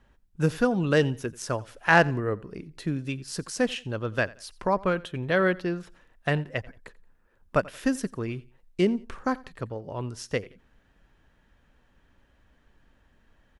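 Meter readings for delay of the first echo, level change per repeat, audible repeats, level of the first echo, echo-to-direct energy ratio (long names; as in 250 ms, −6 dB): 88 ms, −10.0 dB, 2, −22.0 dB, −21.5 dB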